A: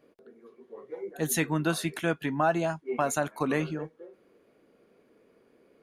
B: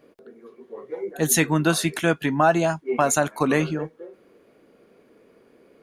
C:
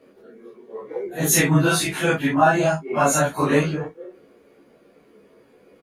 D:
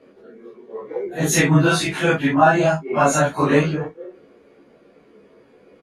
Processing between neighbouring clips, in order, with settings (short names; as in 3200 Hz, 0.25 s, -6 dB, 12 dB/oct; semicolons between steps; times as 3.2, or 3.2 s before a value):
dynamic EQ 6700 Hz, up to +4 dB, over -49 dBFS, Q 0.98; gain +7 dB
phase scrambler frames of 0.1 s; on a send: early reflections 14 ms -3 dB, 25 ms -6.5 dB
air absorption 54 m; gain +2.5 dB